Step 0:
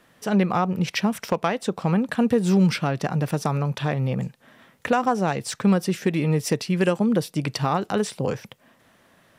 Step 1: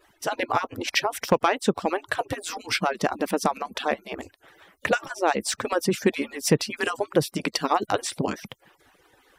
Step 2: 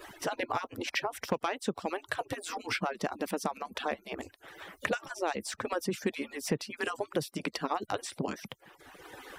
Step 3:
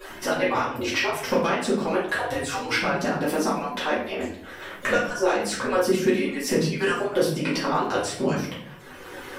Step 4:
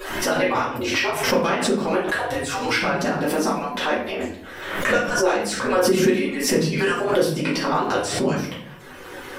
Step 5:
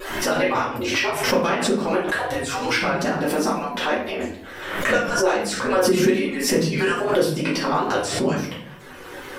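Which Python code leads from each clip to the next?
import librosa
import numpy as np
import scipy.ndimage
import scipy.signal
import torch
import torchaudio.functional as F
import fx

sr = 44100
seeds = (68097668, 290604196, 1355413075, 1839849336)

y1 = fx.hpss_only(x, sr, part='percussive')
y1 = F.gain(torch.from_numpy(y1), 3.5).numpy()
y2 = fx.band_squash(y1, sr, depth_pct=70)
y2 = F.gain(torch.from_numpy(y2), -9.0).numpy()
y3 = fx.room_shoebox(y2, sr, seeds[0], volume_m3=87.0, walls='mixed', distance_m=2.3)
y4 = fx.pre_swell(y3, sr, db_per_s=52.0)
y4 = F.gain(torch.from_numpy(y4), 2.0).numpy()
y5 = fx.vibrato(y4, sr, rate_hz=2.3, depth_cents=36.0)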